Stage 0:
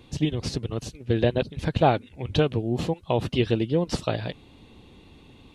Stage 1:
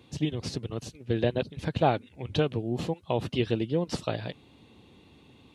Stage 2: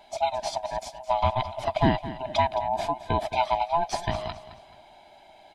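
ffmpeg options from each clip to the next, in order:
-af "highpass=82,volume=-4dB"
-filter_complex "[0:a]afftfilt=real='real(if(lt(b,1008),b+24*(1-2*mod(floor(b/24),2)),b),0)':imag='imag(if(lt(b,1008),b+24*(1-2*mod(floor(b/24),2)),b),0)':win_size=2048:overlap=0.75,asplit=2[a][b];[b]asoftclip=type=tanh:threshold=-17.5dB,volume=-8dB[c];[a][c]amix=inputs=2:normalize=0,aecho=1:1:216|432|648:0.2|0.0698|0.0244"

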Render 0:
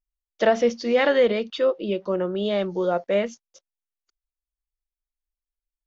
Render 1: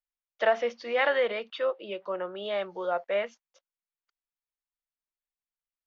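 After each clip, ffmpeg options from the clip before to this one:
-filter_complex "[0:a]acrossover=split=570 3400:gain=0.112 1 0.141[a][b][c];[a][b][c]amix=inputs=3:normalize=0,volume=-1dB"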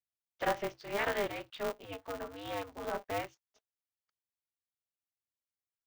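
-af "aeval=exprs='val(0)*sgn(sin(2*PI*100*n/s))':c=same,volume=-8dB"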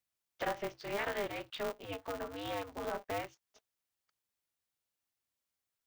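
-af "acompressor=threshold=-47dB:ratio=2,volume=6dB"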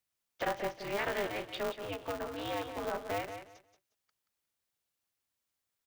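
-af "aecho=1:1:179|358|537:0.355|0.0745|0.0156,volume=2dB"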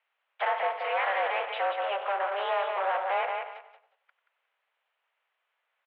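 -filter_complex "[0:a]asplit=2[a][b];[b]highpass=f=720:p=1,volume=21dB,asoftclip=type=tanh:threshold=-22.5dB[c];[a][c]amix=inputs=2:normalize=0,lowpass=f=2.1k:p=1,volume=-6dB,asplit=2[d][e];[e]adelay=94,lowpass=f=1.4k:p=1,volume=-10dB,asplit=2[f][g];[g]adelay=94,lowpass=f=1.4k:p=1,volume=0.38,asplit=2[h][i];[i]adelay=94,lowpass=f=1.4k:p=1,volume=0.38,asplit=2[j][k];[k]adelay=94,lowpass=f=1.4k:p=1,volume=0.38[l];[d][f][h][j][l]amix=inputs=5:normalize=0,highpass=f=350:t=q:w=0.5412,highpass=f=350:t=q:w=1.307,lowpass=f=3k:t=q:w=0.5176,lowpass=f=3k:t=q:w=0.7071,lowpass=f=3k:t=q:w=1.932,afreqshift=120,volume=2.5dB"

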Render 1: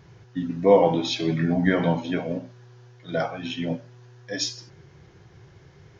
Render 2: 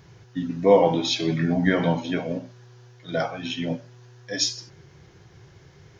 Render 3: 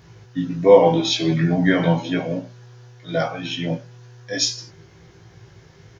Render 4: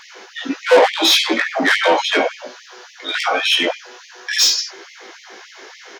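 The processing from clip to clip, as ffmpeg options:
-af "highshelf=f=4.1k:g=6.5"
-filter_complex "[0:a]asplit=2[a][b];[b]adelay=18,volume=-3dB[c];[a][c]amix=inputs=2:normalize=0,volume=1.5dB"
-filter_complex "[0:a]asplit=2[a][b];[b]highpass=f=720:p=1,volume=26dB,asoftclip=type=tanh:threshold=-1dB[c];[a][c]amix=inputs=2:normalize=0,lowpass=f=5.8k:p=1,volume=-6dB,afftfilt=real='re*gte(b*sr/1024,200*pow(1900/200,0.5+0.5*sin(2*PI*3.5*pts/sr)))':imag='im*gte(b*sr/1024,200*pow(1900/200,0.5+0.5*sin(2*PI*3.5*pts/sr)))':win_size=1024:overlap=0.75,volume=-2dB"

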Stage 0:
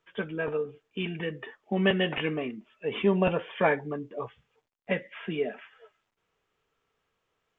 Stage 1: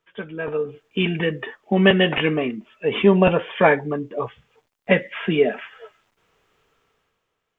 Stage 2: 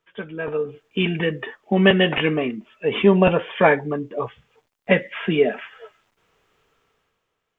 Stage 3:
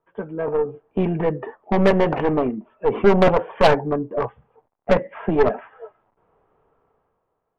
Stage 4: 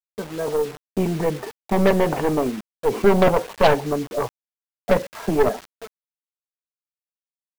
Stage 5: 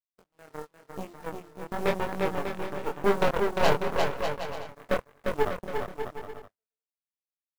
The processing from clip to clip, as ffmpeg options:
-af "dynaudnorm=f=110:g=13:m=13dB"
-af anull
-af "lowpass=f=860:t=q:w=1.7,acontrast=74,aeval=exprs='1*(cos(1*acos(clip(val(0)/1,-1,1)))-cos(1*PI/2))+0.126*(cos(3*acos(clip(val(0)/1,-1,1)))-cos(3*PI/2))+0.0794*(cos(5*acos(clip(val(0)/1,-1,1)))-cos(5*PI/2))+0.251*(cos(6*acos(clip(val(0)/1,-1,1)))-cos(6*PI/2))+0.141*(cos(8*acos(clip(val(0)/1,-1,1)))-cos(8*PI/2))':c=same,volume=-5dB"
-af "acrusher=bits=5:mix=0:aa=0.000001,volume=-1dB"
-filter_complex "[0:a]aeval=exprs='0.841*(cos(1*acos(clip(val(0)/0.841,-1,1)))-cos(1*PI/2))+0.0075*(cos(3*acos(clip(val(0)/0.841,-1,1)))-cos(3*PI/2))+0.119*(cos(7*acos(clip(val(0)/0.841,-1,1)))-cos(7*PI/2))':c=same,asplit=2[a][b];[b]aecho=0:1:350|595|766.5|886.6|970.6:0.631|0.398|0.251|0.158|0.1[c];[a][c]amix=inputs=2:normalize=0,flanger=delay=20:depth=6.6:speed=0.94,volume=-5dB"

